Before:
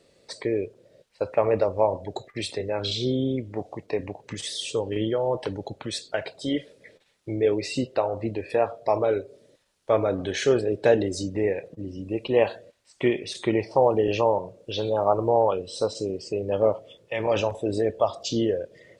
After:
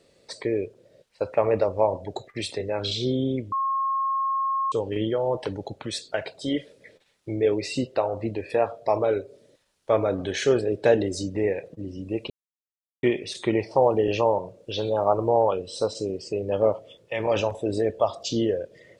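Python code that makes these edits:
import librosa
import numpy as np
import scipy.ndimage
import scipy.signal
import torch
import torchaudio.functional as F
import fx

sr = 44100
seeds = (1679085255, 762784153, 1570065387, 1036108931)

y = fx.edit(x, sr, fx.bleep(start_s=3.52, length_s=1.2, hz=1080.0, db=-22.0),
    fx.silence(start_s=12.3, length_s=0.73), tone=tone)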